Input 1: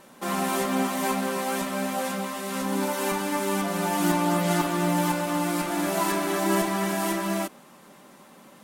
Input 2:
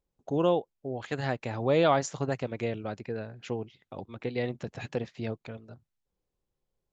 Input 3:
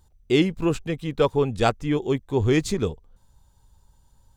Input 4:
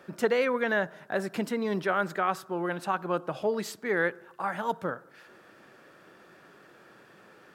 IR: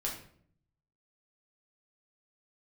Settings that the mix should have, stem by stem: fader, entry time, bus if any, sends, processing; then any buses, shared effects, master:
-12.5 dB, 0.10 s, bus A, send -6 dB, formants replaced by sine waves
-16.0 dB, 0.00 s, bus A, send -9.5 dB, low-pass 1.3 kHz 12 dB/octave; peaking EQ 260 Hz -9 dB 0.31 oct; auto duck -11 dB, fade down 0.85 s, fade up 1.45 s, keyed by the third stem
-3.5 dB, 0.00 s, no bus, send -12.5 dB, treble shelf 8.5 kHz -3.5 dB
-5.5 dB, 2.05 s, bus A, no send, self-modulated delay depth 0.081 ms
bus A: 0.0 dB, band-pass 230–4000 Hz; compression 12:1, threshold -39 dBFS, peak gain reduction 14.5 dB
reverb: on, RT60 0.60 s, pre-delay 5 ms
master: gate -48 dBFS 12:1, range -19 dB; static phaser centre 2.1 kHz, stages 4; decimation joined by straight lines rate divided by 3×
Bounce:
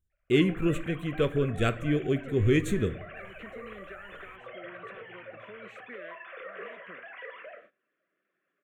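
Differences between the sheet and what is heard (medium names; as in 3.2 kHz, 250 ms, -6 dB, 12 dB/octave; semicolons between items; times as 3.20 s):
stem 3: missing treble shelf 8.5 kHz -3.5 dB; master: missing decimation joined by straight lines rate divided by 3×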